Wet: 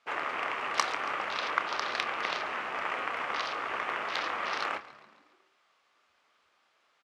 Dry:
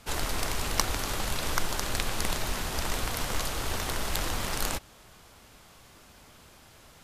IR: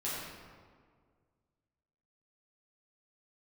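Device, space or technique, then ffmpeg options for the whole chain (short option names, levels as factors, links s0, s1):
intercom: -filter_complex "[0:a]afwtdn=0.0141,equalizer=f=2100:t=o:w=1.3:g=4.5,asplit=6[s0][s1][s2][s3][s4][s5];[s1]adelay=139,afreqshift=-78,volume=0.126[s6];[s2]adelay=278,afreqshift=-156,volume=0.0708[s7];[s3]adelay=417,afreqshift=-234,volume=0.0394[s8];[s4]adelay=556,afreqshift=-312,volume=0.0221[s9];[s5]adelay=695,afreqshift=-390,volume=0.0124[s10];[s0][s6][s7][s8][s9][s10]amix=inputs=6:normalize=0,highpass=470,lowpass=4800,equalizer=f=1200:t=o:w=0.25:g=6.5,asoftclip=type=tanh:threshold=0.376,asplit=2[s11][s12];[s12]adelay=28,volume=0.266[s13];[s11][s13]amix=inputs=2:normalize=0"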